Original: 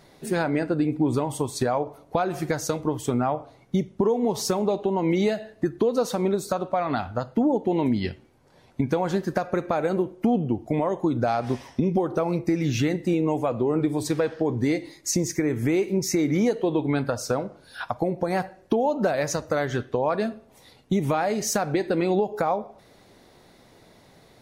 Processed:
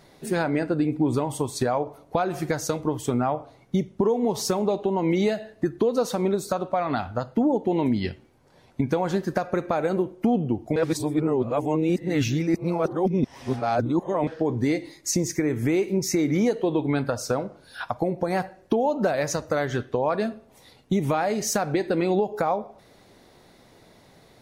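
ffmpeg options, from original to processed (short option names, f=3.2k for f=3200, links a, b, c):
-filter_complex "[0:a]asplit=3[a][b][c];[a]atrim=end=10.762[d];[b]atrim=start=10.758:end=14.272,asetpts=PTS-STARTPTS,areverse[e];[c]atrim=start=14.268[f];[d][e]acrossfade=d=0.004:c1=hsin:c2=hsin[g];[g][f]acrossfade=d=0.004:c1=hsin:c2=hsin"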